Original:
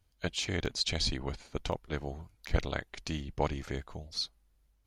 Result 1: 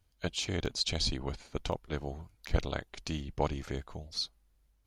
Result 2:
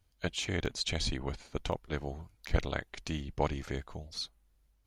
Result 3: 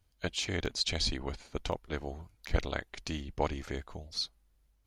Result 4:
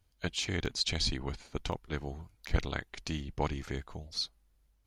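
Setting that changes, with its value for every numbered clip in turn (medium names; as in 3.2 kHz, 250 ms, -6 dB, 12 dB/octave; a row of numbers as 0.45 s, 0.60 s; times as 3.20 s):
dynamic bell, frequency: 1.9 kHz, 4.8 kHz, 140 Hz, 580 Hz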